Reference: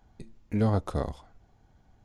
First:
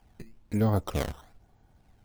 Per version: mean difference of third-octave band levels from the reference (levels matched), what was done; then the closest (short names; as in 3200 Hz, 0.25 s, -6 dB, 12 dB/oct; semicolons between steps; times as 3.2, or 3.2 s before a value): 3.5 dB: decimation with a swept rate 11×, swing 160% 1.1 Hz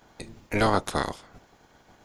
8.0 dB: spectral limiter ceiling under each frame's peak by 24 dB; gain +2.5 dB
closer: first